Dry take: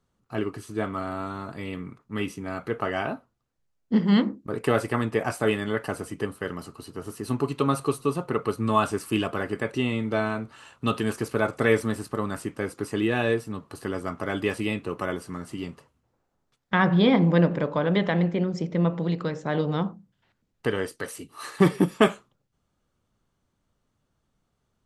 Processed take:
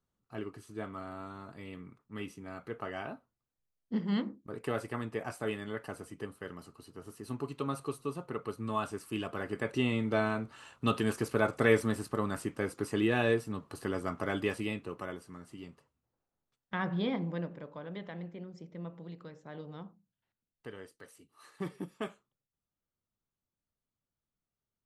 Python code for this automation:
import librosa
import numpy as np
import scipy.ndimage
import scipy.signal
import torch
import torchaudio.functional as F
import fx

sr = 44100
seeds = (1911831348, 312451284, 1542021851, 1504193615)

y = fx.gain(x, sr, db=fx.line((9.12, -11.5), (9.81, -4.0), (14.25, -4.0), (15.29, -13.0), (17.05, -13.0), (17.58, -19.5)))